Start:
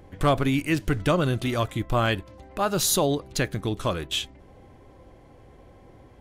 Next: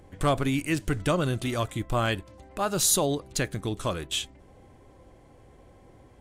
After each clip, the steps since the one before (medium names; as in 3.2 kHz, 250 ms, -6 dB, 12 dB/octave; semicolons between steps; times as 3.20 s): peaking EQ 8.3 kHz +7.5 dB 0.72 oct; trim -3 dB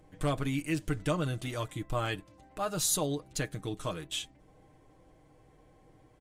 comb 6.5 ms, depth 56%; trim -7.5 dB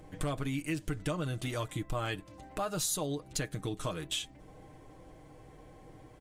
compression 3:1, threshold -41 dBFS, peak gain reduction 12.5 dB; trim +7 dB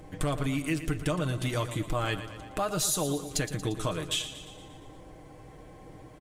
feedback delay 116 ms, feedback 59%, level -12 dB; trim +4.5 dB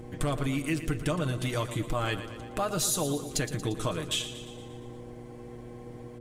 mains buzz 120 Hz, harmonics 4, -45 dBFS -1 dB/octave